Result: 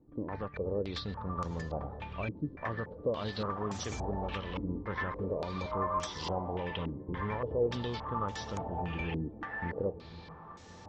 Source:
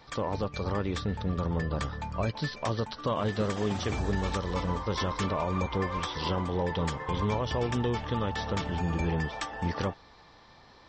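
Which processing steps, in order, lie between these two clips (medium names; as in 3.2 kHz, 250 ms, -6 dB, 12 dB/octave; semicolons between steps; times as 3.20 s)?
5.64–6.06 s: whistle 620 Hz -32 dBFS; echo that smears into a reverb 1149 ms, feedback 43%, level -13.5 dB; step-sequenced low-pass 3.5 Hz 310–6700 Hz; trim -8 dB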